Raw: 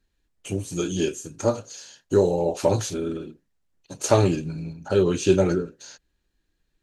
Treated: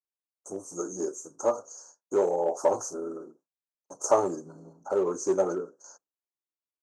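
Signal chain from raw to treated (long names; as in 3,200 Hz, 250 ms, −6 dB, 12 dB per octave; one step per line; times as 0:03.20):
elliptic band-stop filter 1,200–6,100 Hz, stop band 50 dB
high-frequency loss of the air 73 metres
noise gate with hold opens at −41 dBFS
in parallel at −10 dB: gain into a clipping stage and back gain 17.5 dB
on the sum: high-pass filter 570 Hz 12 dB per octave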